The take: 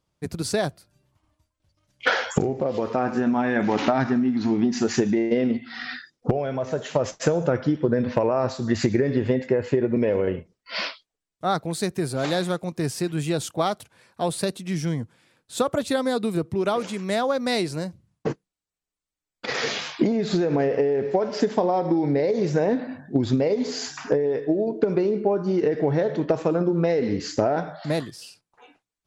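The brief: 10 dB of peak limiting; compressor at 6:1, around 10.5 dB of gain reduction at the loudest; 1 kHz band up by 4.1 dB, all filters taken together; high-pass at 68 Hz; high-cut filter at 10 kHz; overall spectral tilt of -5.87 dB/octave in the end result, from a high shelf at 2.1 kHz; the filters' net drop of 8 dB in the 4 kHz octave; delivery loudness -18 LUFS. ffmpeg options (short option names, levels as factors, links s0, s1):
-af "highpass=68,lowpass=10000,equalizer=f=1000:t=o:g=7.5,highshelf=f=2100:g=-6.5,equalizer=f=4000:t=o:g=-4,acompressor=threshold=0.0447:ratio=6,volume=5.96,alimiter=limit=0.422:level=0:latency=1"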